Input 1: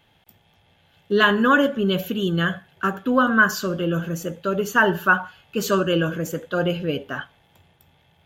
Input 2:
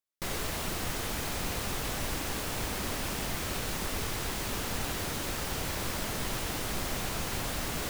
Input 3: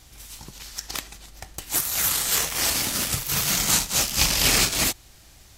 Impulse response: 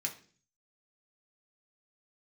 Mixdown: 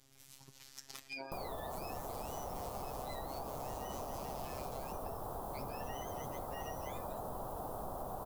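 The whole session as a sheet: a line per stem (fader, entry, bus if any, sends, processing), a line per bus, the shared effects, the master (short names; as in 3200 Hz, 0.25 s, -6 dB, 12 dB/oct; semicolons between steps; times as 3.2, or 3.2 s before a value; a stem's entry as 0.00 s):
-13.5 dB, 0.00 s, bus A, no send, spectrum mirrored in octaves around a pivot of 1000 Hz
-2.0 dB, 1.10 s, no bus, no send, EQ curve 320 Hz 0 dB, 740 Hz +12 dB, 1200 Hz +3 dB, 2100 Hz -27 dB, 3400 Hz -18 dB, 6600 Hz -16 dB, 12000 Hz -2 dB
-14.5 dB, 0.00 s, bus A, no send, limiter -13.5 dBFS, peak gain reduction 11 dB
bus A: 0.0 dB, robotiser 135 Hz; compressor, threshold -39 dBFS, peak gain reduction 12 dB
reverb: off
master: compressor 4:1, threshold -41 dBFS, peak gain reduction 10.5 dB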